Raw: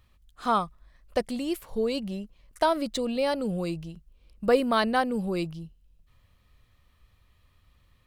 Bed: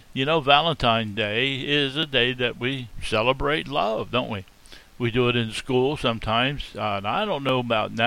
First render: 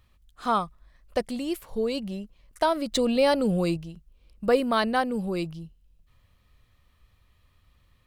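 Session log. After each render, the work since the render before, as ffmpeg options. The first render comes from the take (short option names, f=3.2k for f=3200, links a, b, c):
-filter_complex "[0:a]asettb=1/sr,asplit=3[a][b][c];[a]atrim=end=2.924[d];[b]atrim=start=2.92:end=3.77,asetpts=PTS-STARTPTS,afade=t=in:d=0.004:c=qsin,afade=t=out:st=0.846:d=0.004:c=qsin,acontrast=33[e];[c]atrim=start=3.766[f];[d][e]acrossfade=d=0.004:c1=hsin:c2=qsin[g];[g][f]acrossfade=d=0.004:c1=qsin:c2=hsin"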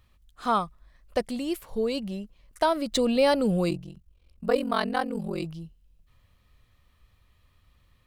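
-filter_complex "[0:a]asettb=1/sr,asplit=3[a][b][c];[a]atrim=end=3.694[d];[b]atrim=start=3.69:end=5.44,asetpts=PTS-STARTPTS,afade=t=in:d=0.004:c=qsin,afade=t=out:st=1.746:d=0.004:c=qsin,aeval=exprs='val(0)*sin(2*PI*22*n/s)':c=same[e];[c]atrim=start=5.436[f];[d][e]acrossfade=d=0.004:c1=hsin:c2=qsin[g];[g][f]acrossfade=d=0.004:c1=qsin:c2=hsin"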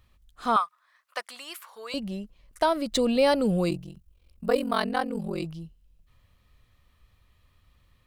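-filter_complex "[0:a]asettb=1/sr,asplit=3[a][b][c];[a]atrim=end=0.564[d];[b]atrim=start=0.56:end=1.94,asetpts=PTS-STARTPTS,afade=t=in:d=0.004:c=qsin,afade=t=out:st=1.376:d=0.004:c=qsin,highpass=f=1.2k:t=q:w=2.2[e];[c]atrim=start=1.936[f];[d][e]acrossfade=d=0.004:c1=hsin:c2=qsin[g];[g][f]acrossfade=d=0.004:c1=qsin:c2=hsin,asettb=1/sr,asplit=3[h][i][j];[h]atrim=end=3.724[k];[i]atrim=start=3.72:end=4.84,asetpts=PTS-STARTPTS,afade=t=in:d=0.004:c=qsin,afade=t=out:st=1.116:d=0.004:c=qsin,highshelf=f=9.1k:g=6.5[l];[j]atrim=start=4.836[m];[k][l]acrossfade=d=0.004:c1=hsin:c2=qsin[n];[n][m]acrossfade=d=0.004:c1=qsin:c2=hsin"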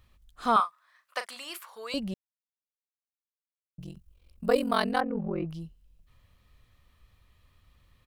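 -filter_complex "[0:a]asplit=3[a][b][c];[a]afade=t=out:st=0.57:d=0.02[d];[b]asplit=2[e][f];[f]adelay=38,volume=-10.5dB[g];[e][g]amix=inputs=2:normalize=0,afade=t=in:st=0.57:d=0.02,afade=t=out:st=1.57:d=0.02[h];[c]afade=t=in:st=1.57:d=0.02[i];[d][h][i]amix=inputs=3:normalize=0,asettb=1/sr,asplit=3[j][k][l];[j]atrim=end=5.004[m];[k]atrim=start=5:end=5.5,asetpts=PTS-STARTPTS,afade=t=in:d=0.004:c=qsin,afade=t=out:st=0.496:d=0.004:c=qsin,lowpass=f=2k:w=0.5412,lowpass=f=2k:w=1.3066[n];[l]atrim=start=5.496[o];[m][n]acrossfade=d=0.004:c1=hsin:c2=qsin[p];[p][o]acrossfade=d=0.004:c1=qsin:c2=hsin,asplit=3[q][r][s];[q]atrim=end=2.14,asetpts=PTS-STARTPTS,afade=t=out:st=2.136:d=0.004:c=hsin[t];[r]atrim=start=2.14:end=3.78,asetpts=PTS-STARTPTS,volume=0[u];[s]atrim=start=3.78,asetpts=PTS-STARTPTS,afade=t=in:d=0.004:c=hsin[v];[t][u][v]concat=n=3:v=0:a=1"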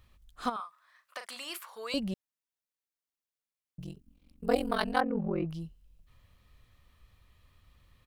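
-filter_complex "[0:a]asplit=3[a][b][c];[a]afade=t=out:st=0.48:d=0.02[d];[b]acompressor=threshold=-37dB:ratio=4:attack=3.2:release=140:knee=1:detection=peak,afade=t=in:st=0.48:d=0.02,afade=t=out:st=1.33:d=0.02[e];[c]afade=t=in:st=1.33:d=0.02[f];[d][e][f]amix=inputs=3:normalize=0,asplit=3[g][h][i];[g]afade=t=out:st=3.93:d=0.02[j];[h]tremolo=f=230:d=0.824,afade=t=in:st=3.93:d=0.02,afade=t=out:st=4.95:d=0.02[k];[i]afade=t=in:st=4.95:d=0.02[l];[j][k][l]amix=inputs=3:normalize=0"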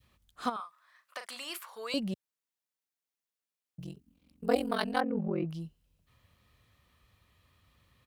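-af "highpass=87,adynamicequalizer=threshold=0.00708:dfrequency=1100:dqfactor=0.91:tfrequency=1100:tqfactor=0.91:attack=5:release=100:ratio=0.375:range=2.5:mode=cutabove:tftype=bell"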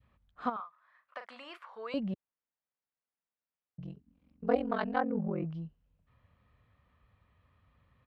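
-af "lowpass=1.8k,equalizer=f=350:t=o:w=0.31:g=-6.5"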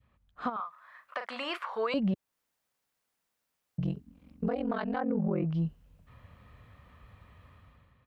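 -af "dynaudnorm=f=130:g=9:m=13dB,alimiter=limit=-21.5dB:level=0:latency=1:release=253"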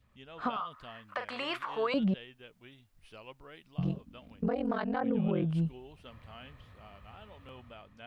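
-filter_complex "[1:a]volume=-28.5dB[a];[0:a][a]amix=inputs=2:normalize=0"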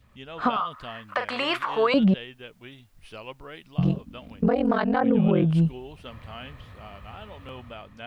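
-af "volume=9.5dB"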